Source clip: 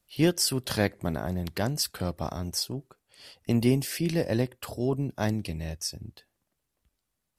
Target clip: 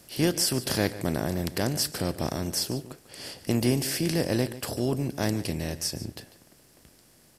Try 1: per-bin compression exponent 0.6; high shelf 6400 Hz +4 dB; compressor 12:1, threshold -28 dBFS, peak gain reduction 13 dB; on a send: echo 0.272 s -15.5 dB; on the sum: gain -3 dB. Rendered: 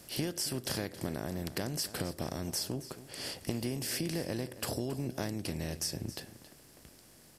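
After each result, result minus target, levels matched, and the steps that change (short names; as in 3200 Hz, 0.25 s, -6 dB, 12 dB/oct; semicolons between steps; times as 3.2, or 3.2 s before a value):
echo 0.126 s late; compressor: peak gain reduction +13 dB
change: echo 0.146 s -15.5 dB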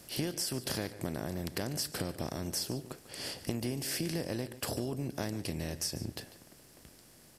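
compressor: peak gain reduction +13 dB
remove: compressor 12:1, threshold -28 dBFS, peak gain reduction 13 dB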